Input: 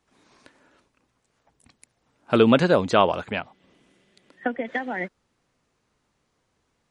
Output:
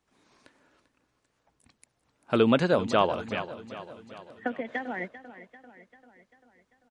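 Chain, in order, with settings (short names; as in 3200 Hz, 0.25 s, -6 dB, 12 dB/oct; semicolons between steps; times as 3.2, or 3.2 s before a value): feedback echo 0.393 s, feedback 56%, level -14.5 dB; gain -5 dB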